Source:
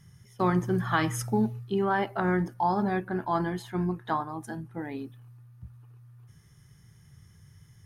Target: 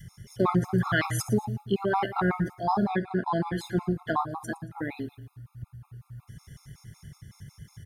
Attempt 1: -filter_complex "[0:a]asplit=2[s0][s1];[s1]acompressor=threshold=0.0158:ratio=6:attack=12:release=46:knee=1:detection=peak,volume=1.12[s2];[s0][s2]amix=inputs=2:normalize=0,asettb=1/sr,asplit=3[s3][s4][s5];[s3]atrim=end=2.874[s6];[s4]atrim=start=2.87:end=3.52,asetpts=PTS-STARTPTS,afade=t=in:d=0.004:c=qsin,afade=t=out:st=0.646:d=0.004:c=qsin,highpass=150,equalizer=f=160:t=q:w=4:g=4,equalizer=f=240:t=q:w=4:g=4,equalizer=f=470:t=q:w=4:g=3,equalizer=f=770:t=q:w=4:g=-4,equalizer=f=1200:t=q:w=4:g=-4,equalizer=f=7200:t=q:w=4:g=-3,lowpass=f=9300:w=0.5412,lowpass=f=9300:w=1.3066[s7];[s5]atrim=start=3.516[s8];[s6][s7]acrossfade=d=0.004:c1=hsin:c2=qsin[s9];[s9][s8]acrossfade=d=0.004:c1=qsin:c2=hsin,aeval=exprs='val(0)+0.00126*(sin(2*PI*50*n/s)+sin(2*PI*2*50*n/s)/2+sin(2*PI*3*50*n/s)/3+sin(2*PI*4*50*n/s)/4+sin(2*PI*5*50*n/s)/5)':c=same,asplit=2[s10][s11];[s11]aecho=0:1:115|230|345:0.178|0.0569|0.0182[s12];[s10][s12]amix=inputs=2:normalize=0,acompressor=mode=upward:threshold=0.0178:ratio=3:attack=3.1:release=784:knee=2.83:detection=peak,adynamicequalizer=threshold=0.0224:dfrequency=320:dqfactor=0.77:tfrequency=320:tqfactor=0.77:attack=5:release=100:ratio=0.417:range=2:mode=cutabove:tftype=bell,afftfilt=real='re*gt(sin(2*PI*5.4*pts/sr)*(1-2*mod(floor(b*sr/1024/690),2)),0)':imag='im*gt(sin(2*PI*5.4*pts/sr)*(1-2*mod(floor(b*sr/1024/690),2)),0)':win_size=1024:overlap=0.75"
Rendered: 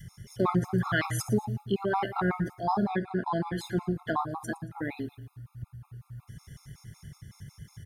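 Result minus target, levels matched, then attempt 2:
compression: peak gain reduction +6.5 dB
-filter_complex "[0:a]asplit=2[s0][s1];[s1]acompressor=threshold=0.0398:ratio=6:attack=12:release=46:knee=1:detection=peak,volume=1.12[s2];[s0][s2]amix=inputs=2:normalize=0,asettb=1/sr,asplit=3[s3][s4][s5];[s3]atrim=end=2.874[s6];[s4]atrim=start=2.87:end=3.52,asetpts=PTS-STARTPTS,afade=t=in:d=0.004:c=qsin,afade=t=out:st=0.646:d=0.004:c=qsin,highpass=150,equalizer=f=160:t=q:w=4:g=4,equalizer=f=240:t=q:w=4:g=4,equalizer=f=470:t=q:w=4:g=3,equalizer=f=770:t=q:w=4:g=-4,equalizer=f=1200:t=q:w=4:g=-4,equalizer=f=7200:t=q:w=4:g=-3,lowpass=f=9300:w=0.5412,lowpass=f=9300:w=1.3066[s7];[s5]atrim=start=3.516[s8];[s6][s7]acrossfade=d=0.004:c1=hsin:c2=qsin[s9];[s9][s8]acrossfade=d=0.004:c1=qsin:c2=hsin,aeval=exprs='val(0)+0.00126*(sin(2*PI*50*n/s)+sin(2*PI*2*50*n/s)/2+sin(2*PI*3*50*n/s)/3+sin(2*PI*4*50*n/s)/4+sin(2*PI*5*50*n/s)/5)':c=same,asplit=2[s10][s11];[s11]aecho=0:1:115|230|345:0.178|0.0569|0.0182[s12];[s10][s12]amix=inputs=2:normalize=0,acompressor=mode=upward:threshold=0.0178:ratio=3:attack=3.1:release=784:knee=2.83:detection=peak,adynamicequalizer=threshold=0.0224:dfrequency=320:dqfactor=0.77:tfrequency=320:tqfactor=0.77:attack=5:release=100:ratio=0.417:range=2:mode=cutabove:tftype=bell,afftfilt=real='re*gt(sin(2*PI*5.4*pts/sr)*(1-2*mod(floor(b*sr/1024/690),2)),0)':imag='im*gt(sin(2*PI*5.4*pts/sr)*(1-2*mod(floor(b*sr/1024/690),2)),0)':win_size=1024:overlap=0.75"

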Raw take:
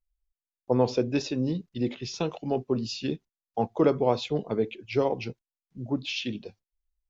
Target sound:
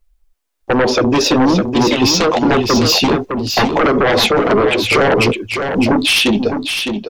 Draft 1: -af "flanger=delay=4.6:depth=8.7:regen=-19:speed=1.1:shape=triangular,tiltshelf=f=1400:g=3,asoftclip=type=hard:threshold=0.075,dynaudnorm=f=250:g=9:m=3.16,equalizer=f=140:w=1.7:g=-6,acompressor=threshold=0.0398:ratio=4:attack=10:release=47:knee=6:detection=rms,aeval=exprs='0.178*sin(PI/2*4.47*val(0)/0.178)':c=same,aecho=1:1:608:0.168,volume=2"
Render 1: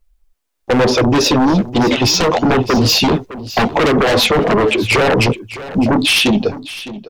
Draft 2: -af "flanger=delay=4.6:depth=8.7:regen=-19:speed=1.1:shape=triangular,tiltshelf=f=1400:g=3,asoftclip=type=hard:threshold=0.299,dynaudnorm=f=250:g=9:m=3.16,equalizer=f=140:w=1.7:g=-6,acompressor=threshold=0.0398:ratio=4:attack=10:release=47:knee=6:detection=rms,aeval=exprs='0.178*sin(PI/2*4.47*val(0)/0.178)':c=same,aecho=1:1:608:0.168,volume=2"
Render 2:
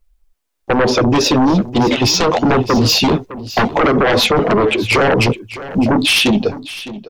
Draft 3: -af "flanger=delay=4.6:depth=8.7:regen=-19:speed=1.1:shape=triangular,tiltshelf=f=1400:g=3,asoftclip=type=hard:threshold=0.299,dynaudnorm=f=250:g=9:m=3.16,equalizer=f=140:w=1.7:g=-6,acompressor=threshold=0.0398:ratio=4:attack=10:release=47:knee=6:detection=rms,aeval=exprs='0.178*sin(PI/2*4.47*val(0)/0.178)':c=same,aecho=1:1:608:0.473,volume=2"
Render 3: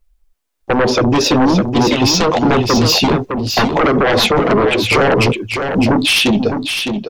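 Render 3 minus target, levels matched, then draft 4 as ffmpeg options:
125 Hz band +3.0 dB
-af "flanger=delay=4.6:depth=8.7:regen=-19:speed=1.1:shape=triangular,tiltshelf=f=1400:g=3,asoftclip=type=hard:threshold=0.299,dynaudnorm=f=250:g=9:m=3.16,equalizer=f=140:w=1.7:g=-15,acompressor=threshold=0.0398:ratio=4:attack=10:release=47:knee=6:detection=rms,aeval=exprs='0.178*sin(PI/2*4.47*val(0)/0.178)':c=same,aecho=1:1:608:0.473,volume=2"

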